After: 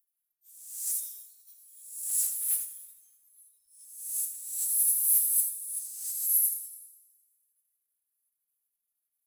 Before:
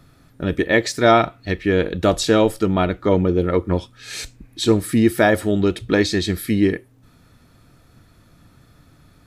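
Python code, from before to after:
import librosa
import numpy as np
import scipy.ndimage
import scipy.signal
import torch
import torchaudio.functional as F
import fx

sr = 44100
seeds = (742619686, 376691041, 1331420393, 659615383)

y = fx.spec_swells(x, sr, rise_s=0.88)
y = scipy.signal.sosfilt(scipy.signal.cheby2(4, 80, [120.0, 2200.0], 'bandstop', fs=sr, output='sos'), y)
y = fx.noise_reduce_blind(y, sr, reduce_db=23)
y = fx.hpss(y, sr, part='harmonic', gain_db=-15)
y = y + 0.91 * np.pad(y, (int(3.8 * sr / 1000.0), 0))[:len(y)]
y = fx.over_compress(y, sr, threshold_db=-36.0, ratio=-0.5)
y = fx.power_curve(y, sr, exponent=0.5)
y = np.diff(y, prepend=0.0)
y = y + 10.0 ** (-7.0 / 20.0) * np.pad(y, (int(83 * sr / 1000.0), 0))[:len(y)]
y = fx.rev_plate(y, sr, seeds[0], rt60_s=4.0, hf_ratio=0.75, predelay_ms=0, drr_db=7.5)
y = fx.band_widen(y, sr, depth_pct=100)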